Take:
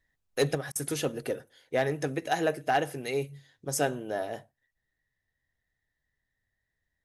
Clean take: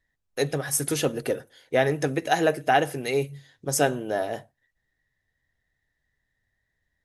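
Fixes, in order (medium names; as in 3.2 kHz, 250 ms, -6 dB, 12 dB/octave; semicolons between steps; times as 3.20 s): clip repair -17 dBFS; interpolate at 0.72 s, 34 ms; trim 0 dB, from 0.55 s +5.5 dB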